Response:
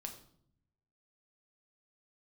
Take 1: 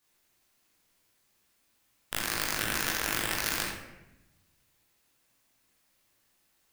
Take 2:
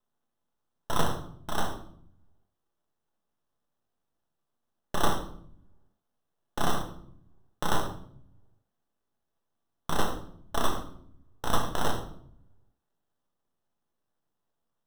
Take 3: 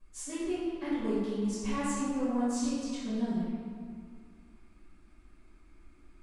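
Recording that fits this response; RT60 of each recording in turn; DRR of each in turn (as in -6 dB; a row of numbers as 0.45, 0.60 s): 2; 0.95, 0.65, 2.0 s; -7.0, 3.0, -15.0 dB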